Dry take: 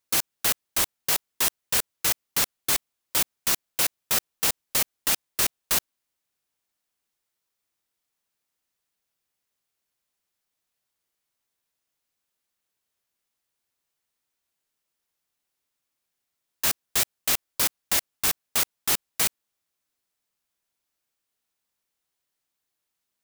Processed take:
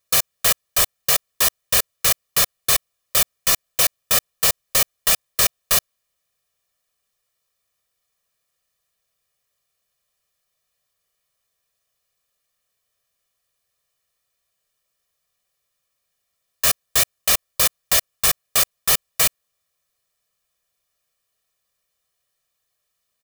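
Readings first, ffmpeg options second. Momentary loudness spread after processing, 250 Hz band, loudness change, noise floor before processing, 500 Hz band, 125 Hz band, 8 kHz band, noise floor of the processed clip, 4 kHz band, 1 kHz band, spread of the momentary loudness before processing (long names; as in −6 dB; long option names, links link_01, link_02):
3 LU, +0.5 dB, +6.0 dB, −82 dBFS, +7.5 dB, +7.0 dB, +6.0 dB, −76 dBFS, +6.5 dB, +6.0 dB, 3 LU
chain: -af "aecho=1:1:1.7:0.8,volume=4dB"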